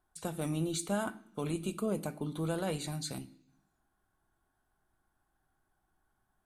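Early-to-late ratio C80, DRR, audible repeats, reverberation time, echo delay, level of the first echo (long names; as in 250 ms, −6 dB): 20.5 dB, 10.0 dB, no echo audible, 0.65 s, no echo audible, no echo audible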